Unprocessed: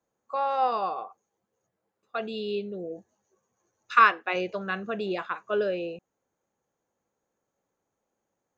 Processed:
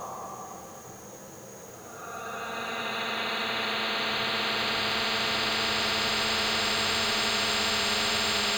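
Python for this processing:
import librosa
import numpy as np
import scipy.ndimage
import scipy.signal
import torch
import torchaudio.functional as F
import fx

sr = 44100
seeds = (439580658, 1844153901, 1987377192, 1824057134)

y = fx.high_shelf(x, sr, hz=5500.0, db=6.0)
y = fx.paulstretch(y, sr, seeds[0], factor=9.0, window_s=1.0, from_s=1.46)
y = fx.spectral_comp(y, sr, ratio=10.0)
y = y * 10.0 ** (6.5 / 20.0)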